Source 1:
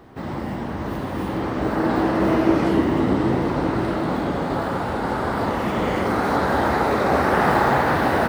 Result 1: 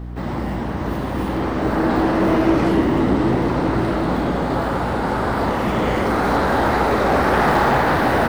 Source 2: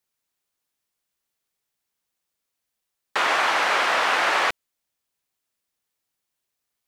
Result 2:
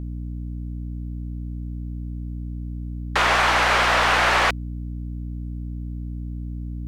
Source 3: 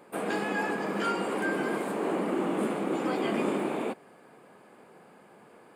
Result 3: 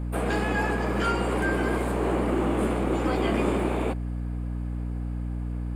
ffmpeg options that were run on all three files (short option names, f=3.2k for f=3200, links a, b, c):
-af "aeval=exprs='val(0)+0.0251*(sin(2*PI*60*n/s)+sin(2*PI*2*60*n/s)/2+sin(2*PI*3*60*n/s)/3+sin(2*PI*4*60*n/s)/4+sin(2*PI*5*60*n/s)/5)':c=same,aeval=exprs='0.562*(cos(1*acos(clip(val(0)/0.562,-1,1)))-cos(1*PI/2))+0.0501*(cos(5*acos(clip(val(0)/0.562,-1,1)))-cos(5*PI/2))+0.0355*(cos(6*acos(clip(val(0)/0.562,-1,1)))-cos(6*PI/2))+0.0398*(cos(8*acos(clip(val(0)/0.562,-1,1)))-cos(8*PI/2))':c=same"